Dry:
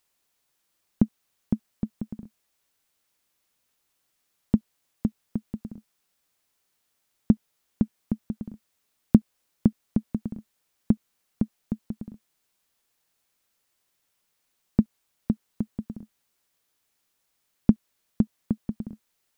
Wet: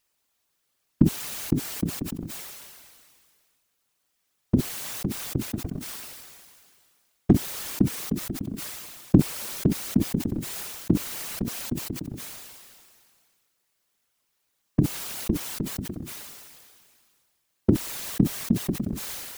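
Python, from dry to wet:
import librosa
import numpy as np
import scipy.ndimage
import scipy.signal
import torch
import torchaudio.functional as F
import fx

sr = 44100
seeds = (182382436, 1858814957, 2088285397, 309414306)

y = fx.leveller(x, sr, passes=1, at=(5.45, 7.33))
y = fx.whisperise(y, sr, seeds[0])
y = fx.sustainer(y, sr, db_per_s=28.0)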